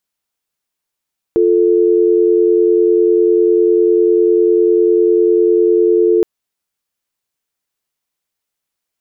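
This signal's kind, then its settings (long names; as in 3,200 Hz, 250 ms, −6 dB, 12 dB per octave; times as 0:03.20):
call progress tone dial tone, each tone −11 dBFS 4.87 s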